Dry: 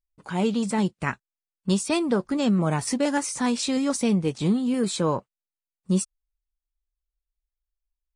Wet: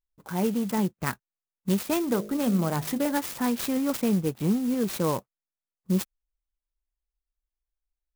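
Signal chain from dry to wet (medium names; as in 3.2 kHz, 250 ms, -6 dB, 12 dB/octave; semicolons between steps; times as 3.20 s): local Wiener filter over 9 samples; 2.02–3.12 s: de-hum 51.96 Hz, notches 14; sampling jitter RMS 0.059 ms; trim -2 dB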